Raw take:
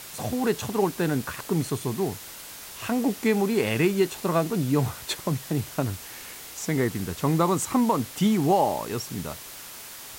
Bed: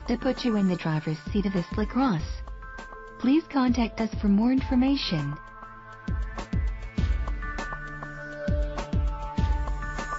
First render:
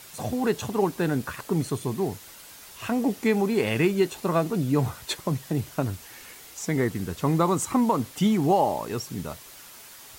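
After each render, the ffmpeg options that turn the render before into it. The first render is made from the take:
ffmpeg -i in.wav -af "afftdn=noise_reduction=6:noise_floor=-42" out.wav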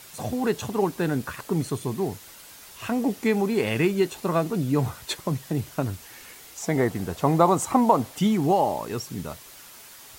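ffmpeg -i in.wav -filter_complex "[0:a]asettb=1/sr,asplit=3[link_01][link_02][link_03];[link_01]atrim=end=6.624[link_04];[link_02]atrim=start=6.62:end=8.16,asetpts=PTS-STARTPTS,afade=type=in:duration=0.004:curve=qsin,afade=type=out:start_time=1.536:duration=0.004:curve=qsin,equalizer=frequency=710:width_type=o:width=0.9:gain=10[link_05];[link_03]atrim=start=8.156[link_06];[link_04][link_05]acrossfade=duration=0.004:curve1=hsin:curve2=qsin[link_07];[link_07][link_06]acrossfade=duration=0.004:curve1=qsin:curve2=hsin" out.wav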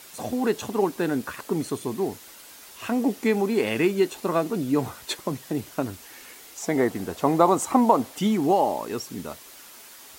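ffmpeg -i in.wav -af "lowshelf=frequency=190:width_type=q:width=1.5:gain=-6.5" out.wav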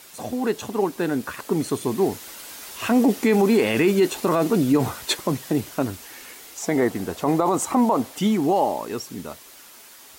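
ffmpeg -i in.wav -af "dynaudnorm=framelen=220:gausssize=17:maxgain=11.5dB,alimiter=limit=-10dB:level=0:latency=1:release=14" out.wav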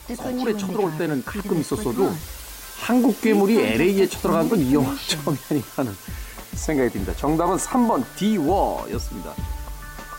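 ffmpeg -i in.wav -i bed.wav -filter_complex "[1:a]volume=-4.5dB[link_01];[0:a][link_01]amix=inputs=2:normalize=0" out.wav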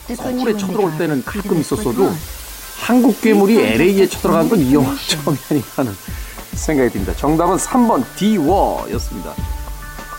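ffmpeg -i in.wav -af "volume=6dB" out.wav

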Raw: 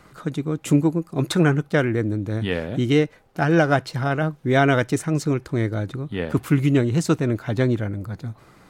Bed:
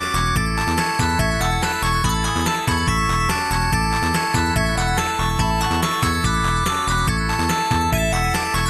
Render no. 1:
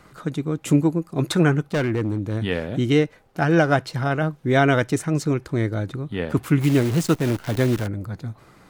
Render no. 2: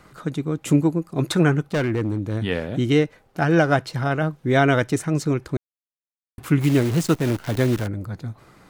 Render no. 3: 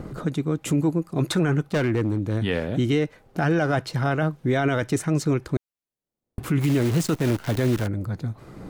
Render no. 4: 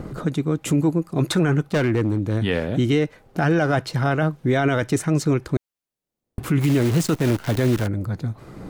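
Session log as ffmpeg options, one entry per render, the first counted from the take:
ffmpeg -i in.wav -filter_complex "[0:a]asettb=1/sr,asplit=3[link_01][link_02][link_03];[link_01]atrim=end=1.634[link_04];[link_02]atrim=start=1.63:end=2.44,asetpts=PTS-STARTPTS,afade=type=in:duration=0.004:curve=qsin,afade=type=out:start_time=0.806:duration=0.004:curve=qsin,asoftclip=type=hard:threshold=-17.5dB[link_05];[link_03]atrim=start=2.436[link_06];[link_04][link_05]acrossfade=duration=0.004:curve1=hsin:curve2=qsin[link_07];[link_07][link_06]acrossfade=duration=0.004:curve1=qsin:curve2=hsin,asplit=3[link_08][link_09][link_10];[link_08]afade=type=out:start_time=6.6:duration=0.02[link_11];[link_09]acrusher=bits=6:dc=4:mix=0:aa=0.000001,afade=type=in:start_time=6.6:duration=0.02,afade=type=out:start_time=7.86:duration=0.02[link_12];[link_10]afade=type=in:start_time=7.86:duration=0.02[link_13];[link_11][link_12][link_13]amix=inputs=3:normalize=0" out.wav
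ffmpeg -i in.wav -filter_complex "[0:a]asplit=3[link_01][link_02][link_03];[link_01]atrim=end=5.57,asetpts=PTS-STARTPTS,afade=type=out:start_time=5.566:duration=0.004:curve=hsin[link_04];[link_02]atrim=start=5.57:end=6.38,asetpts=PTS-STARTPTS,volume=0[link_05];[link_03]atrim=start=6.38,asetpts=PTS-STARTPTS,afade=type=in:duration=0.004:curve=hsin[link_06];[link_04][link_05][link_06]concat=n=3:v=0:a=1" out.wav
ffmpeg -i in.wav -filter_complex "[0:a]acrossover=split=600[link_01][link_02];[link_01]acompressor=mode=upward:threshold=-22dB:ratio=2.5[link_03];[link_03][link_02]amix=inputs=2:normalize=0,alimiter=limit=-13.5dB:level=0:latency=1:release=16" out.wav
ffmpeg -i in.wav -af "volume=2.5dB" out.wav

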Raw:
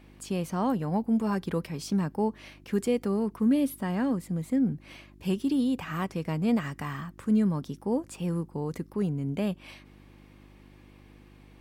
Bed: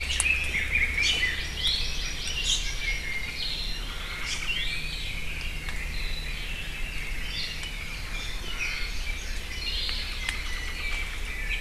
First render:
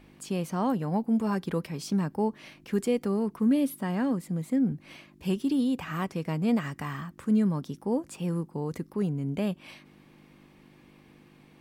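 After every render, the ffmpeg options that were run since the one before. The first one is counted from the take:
ffmpeg -i in.wav -af "bandreject=frequency=50:width_type=h:width=4,bandreject=frequency=100:width_type=h:width=4" out.wav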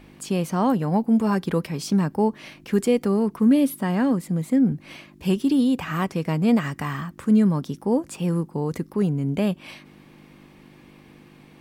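ffmpeg -i in.wav -af "volume=6.5dB" out.wav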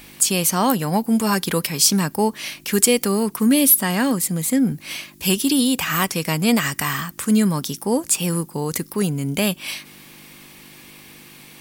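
ffmpeg -i in.wav -af "crystalizer=i=9.5:c=0,asoftclip=type=hard:threshold=-3dB" out.wav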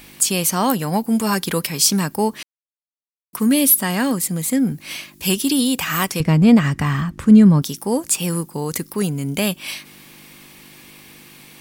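ffmpeg -i in.wav -filter_complex "[0:a]asettb=1/sr,asplit=3[link_01][link_02][link_03];[link_01]atrim=end=6.204[link_04];[link_02]atrim=start=6.2:end=7.62,asetpts=PTS-STARTPTS,afade=type=in:duration=0.004:curve=qsin,afade=type=out:start_time=1.416:duration=0.004:curve=qsin,aemphasis=mode=reproduction:type=riaa[link_05];[link_03]atrim=start=7.616[link_06];[link_04][link_05]acrossfade=duration=0.004:curve1=hsin:curve2=qsin[link_07];[link_07][link_06]acrossfade=duration=0.004:curve1=qsin:curve2=hsin,asplit=3[link_08][link_09][link_10];[link_08]atrim=end=2.43,asetpts=PTS-STARTPTS,afade=type=out:start_time=2.426:duration=0.004:curve=hsin[link_11];[link_09]atrim=start=2.43:end=3.33,asetpts=PTS-STARTPTS,volume=0[link_12];[link_10]atrim=start=3.33,asetpts=PTS-STARTPTS,afade=type=in:duration=0.004:curve=hsin[link_13];[link_11][link_12][link_13]concat=n=3:v=0:a=1" out.wav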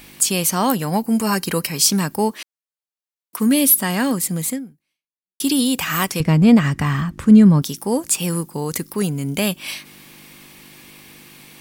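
ffmpeg -i in.wav -filter_complex "[0:a]asettb=1/sr,asplit=3[link_01][link_02][link_03];[link_01]atrim=end=1.004[link_04];[link_02]atrim=start=1:end=1.77,asetpts=PTS-STARTPTS,afade=type=in:duration=0.004:curve=qsin,afade=type=out:start_time=0.766:duration=0.004:curve=qsin,asuperstop=centerf=3500:order=20:qfactor=7.2[link_05];[link_03]atrim=start=1.766[link_06];[link_04][link_05]acrossfade=duration=0.004:curve1=hsin:curve2=qsin[link_07];[link_07][link_06]acrossfade=duration=0.004:curve1=qsin:curve2=hsin,asettb=1/sr,asplit=3[link_08][link_09][link_10];[link_08]atrim=end=2.324[link_11];[link_09]atrim=start=2.32:end=3.4,asetpts=PTS-STARTPTS,afade=type=in:duration=0.004:curve=qsin,afade=type=out:start_time=1.076:duration=0.004:curve=qsin,highpass=340[link_12];[link_10]atrim=start=3.396[link_13];[link_11][link_12]acrossfade=duration=0.004:curve1=hsin:curve2=qsin[link_14];[link_14][link_13]acrossfade=duration=0.004:curve1=qsin:curve2=hsin,asplit=2[link_15][link_16];[link_15]atrim=end=5.4,asetpts=PTS-STARTPTS,afade=type=out:start_time=4.49:duration=0.91:curve=exp[link_17];[link_16]atrim=start=5.4,asetpts=PTS-STARTPTS,afade=type=in:duration=0.004:curve=hsin[link_18];[link_17][link_18]concat=n=2:v=0:a=1" out.wav

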